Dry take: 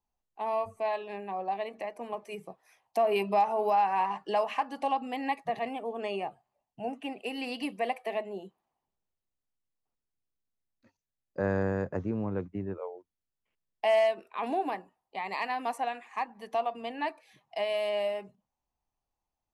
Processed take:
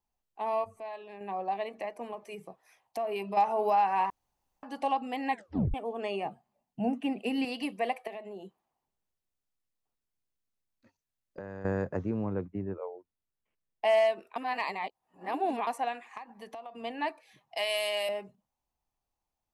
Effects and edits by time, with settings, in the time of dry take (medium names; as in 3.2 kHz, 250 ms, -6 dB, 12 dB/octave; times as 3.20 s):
0.64–1.21 s: compression 1.5:1, threshold -55 dBFS
2.11–3.37 s: compression 1.5:1, threshold -42 dBFS
4.10–4.63 s: room tone
5.30 s: tape stop 0.44 s
6.25–7.45 s: peaking EQ 210 Hz +13.5 dB 0.91 oct
8.07–11.65 s: compression, threshold -38 dBFS
12.33–13.85 s: treble shelf 2.5 kHz -8 dB
14.36–15.67 s: reverse
16.17–16.83 s: compression 12:1, threshold -39 dBFS
17.57–18.09 s: tilt EQ +4.5 dB/octave